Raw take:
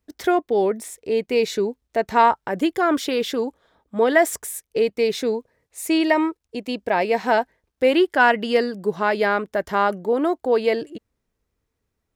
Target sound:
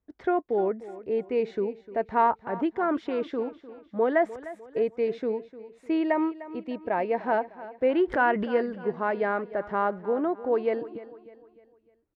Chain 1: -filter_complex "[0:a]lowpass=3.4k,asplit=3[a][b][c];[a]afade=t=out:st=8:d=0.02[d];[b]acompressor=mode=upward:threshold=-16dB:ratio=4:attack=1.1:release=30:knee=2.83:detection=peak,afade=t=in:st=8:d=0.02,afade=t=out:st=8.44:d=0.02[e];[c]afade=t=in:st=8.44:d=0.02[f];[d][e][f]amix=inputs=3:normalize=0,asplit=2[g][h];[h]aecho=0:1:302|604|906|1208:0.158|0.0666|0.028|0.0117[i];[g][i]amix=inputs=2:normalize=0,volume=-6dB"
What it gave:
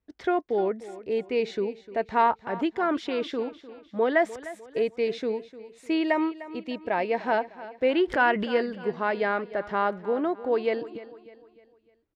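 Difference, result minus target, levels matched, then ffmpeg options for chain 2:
4000 Hz band +9.5 dB
-filter_complex "[0:a]lowpass=1.6k,asplit=3[a][b][c];[a]afade=t=out:st=8:d=0.02[d];[b]acompressor=mode=upward:threshold=-16dB:ratio=4:attack=1.1:release=30:knee=2.83:detection=peak,afade=t=in:st=8:d=0.02,afade=t=out:st=8.44:d=0.02[e];[c]afade=t=in:st=8.44:d=0.02[f];[d][e][f]amix=inputs=3:normalize=0,asplit=2[g][h];[h]aecho=0:1:302|604|906|1208:0.158|0.0666|0.028|0.0117[i];[g][i]amix=inputs=2:normalize=0,volume=-6dB"

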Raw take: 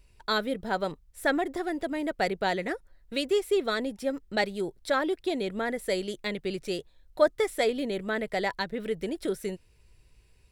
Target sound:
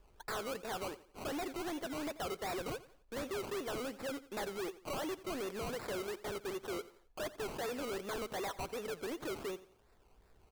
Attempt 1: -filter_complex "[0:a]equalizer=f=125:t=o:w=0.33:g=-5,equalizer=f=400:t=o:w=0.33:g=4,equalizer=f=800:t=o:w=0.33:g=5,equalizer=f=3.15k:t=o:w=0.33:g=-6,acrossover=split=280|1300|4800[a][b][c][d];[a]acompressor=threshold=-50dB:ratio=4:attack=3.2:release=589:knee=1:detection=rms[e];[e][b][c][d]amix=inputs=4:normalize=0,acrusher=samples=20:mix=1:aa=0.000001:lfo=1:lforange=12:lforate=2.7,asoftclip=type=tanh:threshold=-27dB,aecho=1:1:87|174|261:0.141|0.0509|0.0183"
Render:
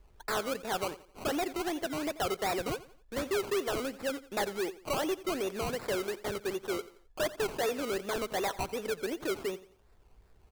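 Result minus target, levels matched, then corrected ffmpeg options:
compressor: peak gain reduction -7 dB; soft clip: distortion -5 dB
-filter_complex "[0:a]equalizer=f=125:t=o:w=0.33:g=-5,equalizer=f=400:t=o:w=0.33:g=4,equalizer=f=800:t=o:w=0.33:g=5,equalizer=f=3.15k:t=o:w=0.33:g=-6,acrossover=split=280|1300|4800[a][b][c][d];[a]acompressor=threshold=-59.5dB:ratio=4:attack=3.2:release=589:knee=1:detection=rms[e];[e][b][c][d]amix=inputs=4:normalize=0,acrusher=samples=20:mix=1:aa=0.000001:lfo=1:lforange=12:lforate=2.7,asoftclip=type=tanh:threshold=-37dB,aecho=1:1:87|174|261:0.141|0.0509|0.0183"

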